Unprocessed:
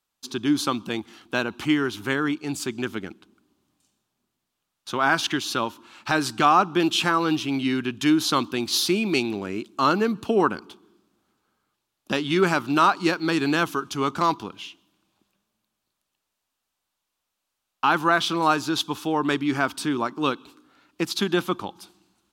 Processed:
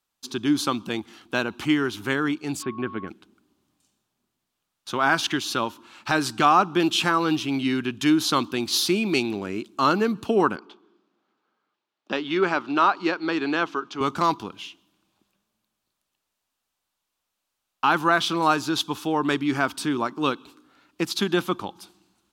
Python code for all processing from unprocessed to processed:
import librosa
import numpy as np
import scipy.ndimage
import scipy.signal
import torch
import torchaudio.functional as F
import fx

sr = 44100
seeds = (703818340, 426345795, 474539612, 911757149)

y = fx.gaussian_blur(x, sr, sigma=3.2, at=(2.61, 3.07), fade=0.02)
y = fx.dmg_tone(y, sr, hz=1100.0, level_db=-38.0, at=(2.61, 3.07), fade=0.02)
y = fx.chain(y, sr, fx.highpass(hz=280.0, slope=12),
    fx.air_absorb(metres=160.0), at=(10.56, 14.01))